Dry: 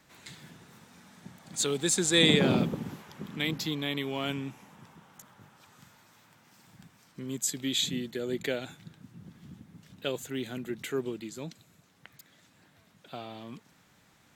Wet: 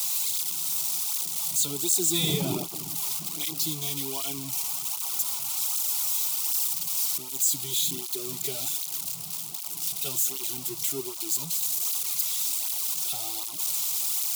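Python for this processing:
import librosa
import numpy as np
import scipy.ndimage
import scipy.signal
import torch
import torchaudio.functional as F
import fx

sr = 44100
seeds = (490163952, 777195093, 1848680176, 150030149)

y = x + 0.5 * 10.0 ** (-16.5 / 20.0) * np.diff(np.sign(x), prepend=np.sign(x[:1]))
y = fx.fixed_phaser(y, sr, hz=340.0, stages=8)
y = fx.flanger_cancel(y, sr, hz=1.3, depth_ms=3.9)
y = F.gain(torch.from_numpy(y), 1.0).numpy()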